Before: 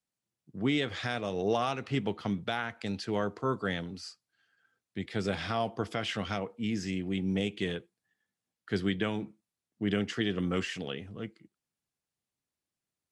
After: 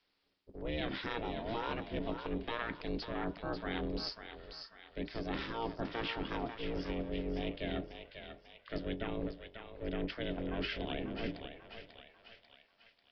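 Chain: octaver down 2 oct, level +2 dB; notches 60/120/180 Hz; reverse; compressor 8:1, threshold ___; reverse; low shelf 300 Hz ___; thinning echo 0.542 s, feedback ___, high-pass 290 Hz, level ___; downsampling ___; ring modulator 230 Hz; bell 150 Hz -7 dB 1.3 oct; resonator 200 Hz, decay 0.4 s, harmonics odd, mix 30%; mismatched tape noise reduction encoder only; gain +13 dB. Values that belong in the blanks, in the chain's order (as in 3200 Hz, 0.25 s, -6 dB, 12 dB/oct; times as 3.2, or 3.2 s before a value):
-42 dBFS, +2.5 dB, 36%, -8 dB, 11025 Hz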